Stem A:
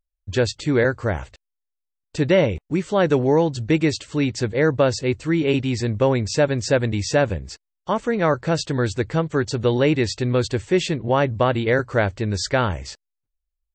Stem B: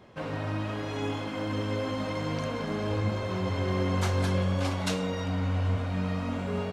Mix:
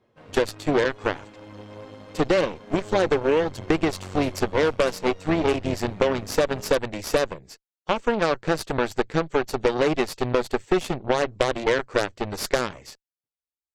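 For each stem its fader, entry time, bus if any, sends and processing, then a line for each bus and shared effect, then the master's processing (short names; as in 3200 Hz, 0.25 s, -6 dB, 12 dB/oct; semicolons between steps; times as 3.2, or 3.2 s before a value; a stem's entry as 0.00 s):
-2.0 dB, 0.00 s, no send, HPF 150 Hz 12 dB/oct
-4.5 dB, 0.00 s, no send, flange 0.24 Hz, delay 8.4 ms, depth 1.7 ms, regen -37%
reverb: off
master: bell 440 Hz +4.5 dB 0.81 oct; added harmonics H 5 -8 dB, 7 -9 dB, 8 -14 dB, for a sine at -4.5 dBFS; compressor, threshold -17 dBFS, peak gain reduction 9 dB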